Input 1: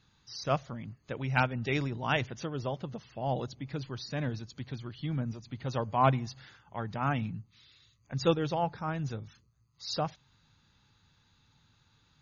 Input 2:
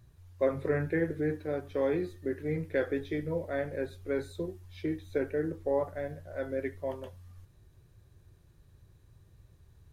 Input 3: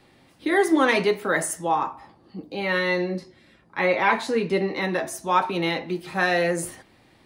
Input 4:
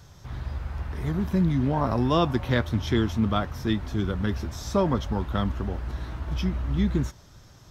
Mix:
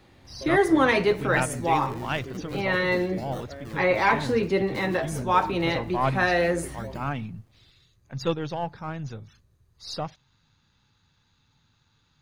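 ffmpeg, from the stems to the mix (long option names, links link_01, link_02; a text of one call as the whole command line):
ffmpeg -i stem1.wav -i stem2.wav -i stem3.wav -i stem4.wav -filter_complex "[0:a]aeval=exprs='if(lt(val(0),0),0.708*val(0),val(0))':channel_layout=same,volume=1.5dB[link_01];[1:a]alimiter=level_in=1dB:limit=-24dB:level=0:latency=1,volume=-1dB,volume=-6dB[link_02];[2:a]highshelf=frequency=5100:gain=-6.5,volume=-0.5dB[link_03];[3:a]acompressor=threshold=-24dB:ratio=3,acrusher=samples=35:mix=1:aa=0.000001:lfo=1:lforange=35:lforate=0.53,volume=-14dB[link_04];[link_01][link_02][link_03][link_04]amix=inputs=4:normalize=0" out.wav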